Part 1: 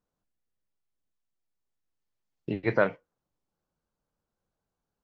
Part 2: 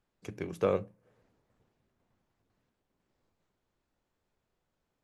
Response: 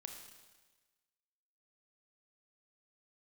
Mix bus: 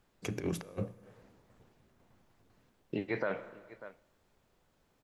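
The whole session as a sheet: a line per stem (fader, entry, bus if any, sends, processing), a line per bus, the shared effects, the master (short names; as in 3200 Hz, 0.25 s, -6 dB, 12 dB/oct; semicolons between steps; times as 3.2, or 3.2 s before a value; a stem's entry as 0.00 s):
-2.5 dB, 0.45 s, send -7.5 dB, echo send -22 dB, low shelf 140 Hz -12 dB
+2.0 dB, 0.00 s, send -7.5 dB, no echo send, limiter -20 dBFS, peak gain reduction 5 dB; negative-ratio compressor -40 dBFS, ratio -0.5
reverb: on, RT60 1.3 s, pre-delay 26 ms
echo: echo 0.592 s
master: limiter -22.5 dBFS, peak gain reduction 11 dB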